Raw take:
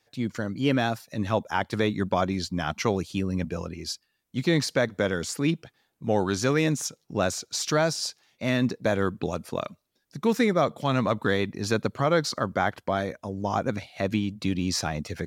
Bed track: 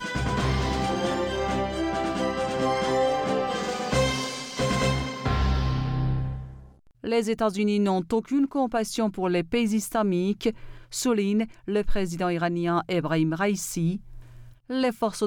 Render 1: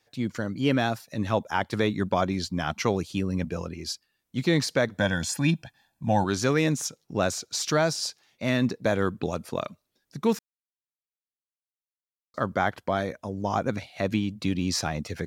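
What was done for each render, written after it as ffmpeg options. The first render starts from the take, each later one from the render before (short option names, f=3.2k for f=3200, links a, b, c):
-filter_complex "[0:a]asettb=1/sr,asplit=3[a][b][c];[a]atrim=end=4.984[d];[b]atrim=start=4.98:end=6.24,asetpts=PTS-STARTPTS,afade=t=in:d=0.004:c=qsin,afade=t=out:st=1.256:d=0.004:c=qsin,aecho=1:1:1.2:0.92,atrim=end_sample=55566[e];[c]atrim=start=6.236[f];[d][e]acrossfade=d=0.004:c1=hsin:c2=qsin[g];[g][f]acrossfade=d=0.004:c1=qsin:c2=hsin,asplit=3[h][i][j];[h]atrim=end=10.39,asetpts=PTS-STARTPTS,afade=t=out:st=10.386:d=0.004:c=hsin[k];[i]atrim=start=10.39:end=12.34,asetpts=PTS-STARTPTS,volume=0[l];[j]atrim=start=12.34,asetpts=PTS-STARTPTS,afade=t=in:d=0.004:c=hsin[m];[k][l][m]concat=n=3:v=0:a=1"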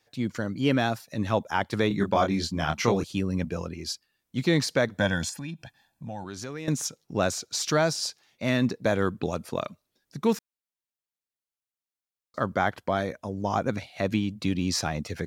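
-filter_complex "[0:a]asettb=1/sr,asplit=3[a][b][c];[a]atrim=end=1.884[d];[b]atrim=start=1.88:end=3.04,asetpts=PTS-STARTPTS,afade=t=in:d=0.004:c=qsin,afade=t=out:st=1.156:d=0.004:c=qsin,asplit=2[e][f];[f]adelay=25,volume=-3.5dB[g];[e][g]amix=inputs=2:normalize=0,atrim=end_sample=51156[h];[c]atrim=start=3.036[i];[d][h]acrossfade=d=0.004:c1=hsin:c2=qsin[j];[j][i]acrossfade=d=0.004:c1=qsin:c2=hsin,asettb=1/sr,asplit=3[k][l][m];[k]atrim=end=5.294[n];[l]atrim=start=5.29:end=6.68,asetpts=PTS-STARTPTS,afade=t=in:d=0.004:c=qsin,afade=t=out:st=1.386:d=0.004:c=qsin,acompressor=threshold=-37dB:ratio=3:attack=3.2:release=140:knee=1:detection=peak[o];[m]atrim=start=6.676[p];[n][o]acrossfade=d=0.004:c1=hsin:c2=qsin[q];[q][p]acrossfade=d=0.004:c1=qsin:c2=hsin"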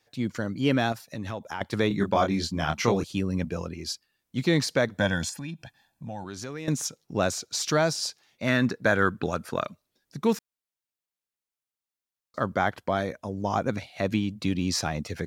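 -filter_complex "[0:a]asettb=1/sr,asplit=3[a][b][c];[a]atrim=end=0.924[d];[b]atrim=start=0.92:end=1.61,asetpts=PTS-STARTPTS,afade=t=in:d=0.004:c=qsin,afade=t=out:st=0.686:d=0.004:c=qsin,acompressor=threshold=-30dB:ratio=4:attack=3.2:release=140:knee=1:detection=peak[e];[c]atrim=start=1.606[f];[d][e]acrossfade=d=0.004:c1=hsin:c2=qsin[g];[g][f]acrossfade=d=0.004:c1=qsin:c2=hsin,asettb=1/sr,asplit=3[h][i][j];[h]atrim=end=8.474[k];[i]atrim=start=8.47:end=9.65,asetpts=PTS-STARTPTS,afade=t=in:d=0.004:c=qsin,afade=t=out:st=1.176:d=0.004:c=qsin,equalizer=f=1.5k:t=o:w=0.58:g=10.5[l];[j]atrim=start=9.646[m];[k][l]acrossfade=d=0.004:c1=hsin:c2=qsin[n];[n][m]acrossfade=d=0.004:c1=qsin:c2=hsin"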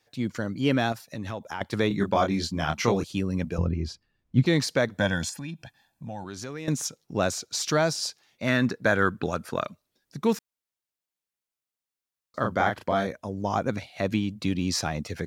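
-filter_complex "[0:a]asettb=1/sr,asplit=3[a][b][c];[a]atrim=end=3.584[d];[b]atrim=start=3.58:end=4.46,asetpts=PTS-STARTPTS,afade=t=in:d=0.004:c=qsin,afade=t=out:st=0.876:d=0.004:c=qsin,aemphasis=mode=reproduction:type=riaa[e];[c]atrim=start=4.456[f];[d][e]acrossfade=d=0.004:c1=hsin:c2=qsin[g];[g][f]acrossfade=d=0.004:c1=qsin:c2=hsin,asettb=1/sr,asplit=3[h][i][j];[h]atrim=end=12.404[k];[i]atrim=start=12.4:end=13.07,asetpts=PTS-STARTPTS,afade=t=in:d=0.004:c=qsin,afade=t=out:st=0.666:d=0.004:c=qsin,asplit=2[l][m];[m]adelay=35,volume=-4dB[n];[l][n]amix=inputs=2:normalize=0,atrim=end_sample=29547[o];[j]atrim=start=13.066[p];[k][o]acrossfade=d=0.004:c1=hsin:c2=qsin[q];[q][p]acrossfade=d=0.004:c1=qsin:c2=hsin"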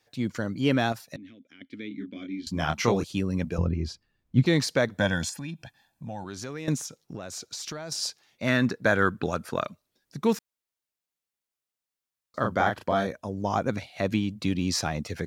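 -filter_complex "[0:a]asettb=1/sr,asplit=3[a][b][c];[a]atrim=end=1.164[d];[b]atrim=start=1.16:end=2.47,asetpts=PTS-STARTPTS,afade=t=in:d=0.004:c=qsin,afade=t=out:st=1.306:d=0.004:c=qsin,asplit=3[e][f][g];[e]bandpass=f=270:t=q:w=8,volume=0dB[h];[f]bandpass=f=2.29k:t=q:w=8,volume=-6dB[i];[g]bandpass=f=3.01k:t=q:w=8,volume=-9dB[j];[h][i][j]amix=inputs=3:normalize=0[k];[c]atrim=start=2.466[l];[d][k]acrossfade=d=0.004:c1=hsin:c2=qsin[m];[m][l]acrossfade=d=0.004:c1=qsin:c2=hsin,asettb=1/sr,asplit=3[n][o][p];[n]atrim=end=6.774[q];[o]atrim=start=6.77:end=7.92,asetpts=PTS-STARTPTS,afade=t=in:d=0.004:c=qsin,afade=t=out:st=1.146:d=0.004:c=qsin,acompressor=threshold=-32dB:ratio=16:attack=3.2:release=140:knee=1:detection=peak[r];[p]atrim=start=7.916[s];[q][r]acrossfade=d=0.004:c1=hsin:c2=qsin[t];[t][s]acrossfade=d=0.004:c1=qsin:c2=hsin,asettb=1/sr,asplit=3[u][v][w];[u]atrim=end=12.604[x];[v]atrim=start=12.6:end=13.34,asetpts=PTS-STARTPTS,afade=t=in:d=0.004:c=qsin,afade=t=out:st=0.736:d=0.004:c=qsin,bandreject=f=2.1k:w=12[y];[w]atrim=start=13.336[z];[x][y]acrossfade=d=0.004:c1=hsin:c2=qsin[aa];[aa][z]acrossfade=d=0.004:c1=qsin:c2=hsin"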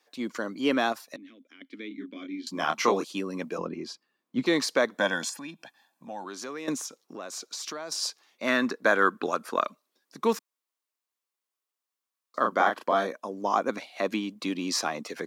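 -af "highpass=f=250:w=0.5412,highpass=f=250:w=1.3066,equalizer=f=1.1k:w=4.4:g=8"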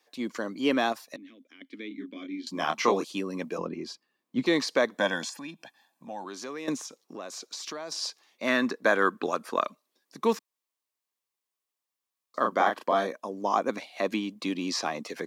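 -filter_complex "[0:a]equalizer=f=1.4k:w=7:g=-5.5,acrossover=split=6200[a][b];[b]acompressor=threshold=-46dB:ratio=4:attack=1:release=60[c];[a][c]amix=inputs=2:normalize=0"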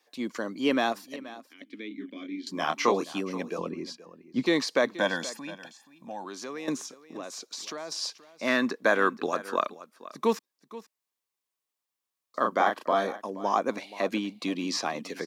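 -af "aecho=1:1:477:0.141"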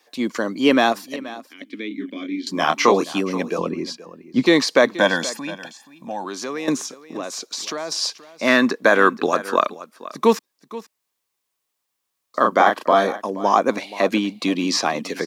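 -af "volume=9.5dB,alimiter=limit=-2dB:level=0:latency=1"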